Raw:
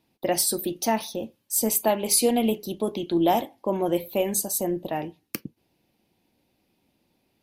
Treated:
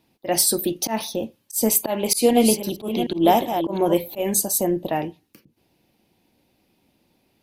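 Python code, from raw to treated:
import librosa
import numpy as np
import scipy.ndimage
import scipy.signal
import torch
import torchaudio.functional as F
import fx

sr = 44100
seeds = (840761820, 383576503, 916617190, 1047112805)

y = fx.reverse_delay(x, sr, ms=369, wet_db=-8, at=(1.96, 4.19))
y = fx.auto_swell(y, sr, attack_ms=119.0)
y = y * librosa.db_to_amplitude(5.0)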